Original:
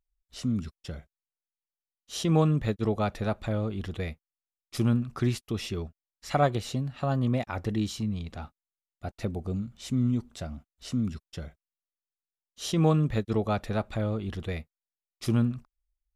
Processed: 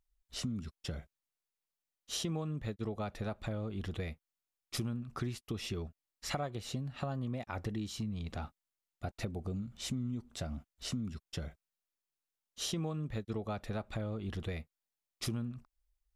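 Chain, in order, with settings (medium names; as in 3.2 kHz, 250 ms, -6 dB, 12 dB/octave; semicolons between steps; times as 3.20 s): compression 6:1, threshold -37 dBFS, peak gain reduction 18.5 dB; trim +2 dB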